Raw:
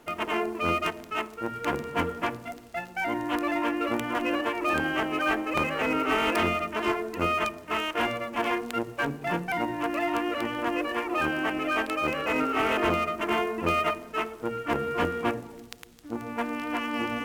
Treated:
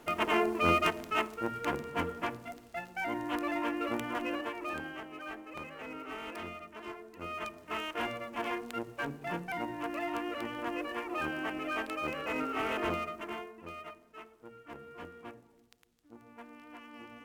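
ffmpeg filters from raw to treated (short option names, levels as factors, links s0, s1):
-af "volume=2.82,afade=t=out:st=1.16:d=0.63:silence=0.501187,afade=t=out:st=4.04:d=1:silence=0.281838,afade=t=in:st=7.2:d=0.48:silence=0.354813,afade=t=out:st=12.93:d=0.61:silence=0.251189"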